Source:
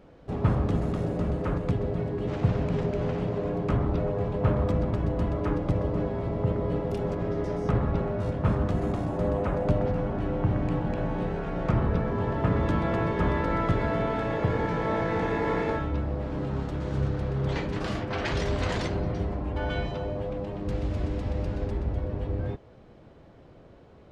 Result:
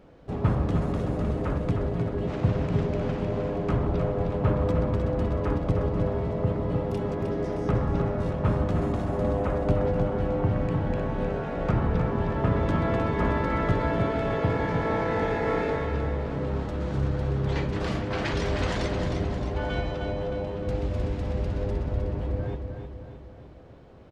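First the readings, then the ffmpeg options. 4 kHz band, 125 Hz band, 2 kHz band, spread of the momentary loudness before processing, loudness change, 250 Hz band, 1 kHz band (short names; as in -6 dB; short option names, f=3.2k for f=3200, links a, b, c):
+1.0 dB, +1.0 dB, +1.0 dB, 5 LU, +1.0 dB, +0.5 dB, +1.0 dB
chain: -af "aecho=1:1:309|618|927|1236|1545|1854:0.473|0.241|0.123|0.0628|0.032|0.0163"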